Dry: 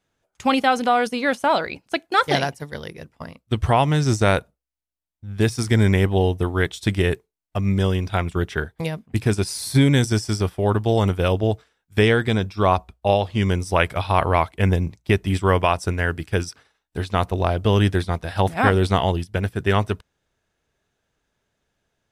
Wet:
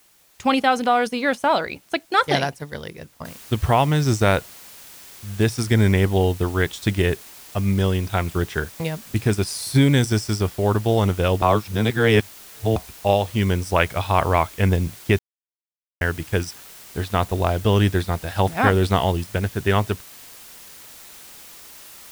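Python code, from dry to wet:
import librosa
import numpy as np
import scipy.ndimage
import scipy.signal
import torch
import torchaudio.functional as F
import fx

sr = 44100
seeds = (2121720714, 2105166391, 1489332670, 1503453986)

y = fx.noise_floor_step(x, sr, seeds[0], at_s=3.25, before_db=-57, after_db=-43, tilt_db=0.0)
y = fx.edit(y, sr, fx.reverse_span(start_s=11.42, length_s=1.34),
    fx.silence(start_s=15.19, length_s=0.82), tone=tone)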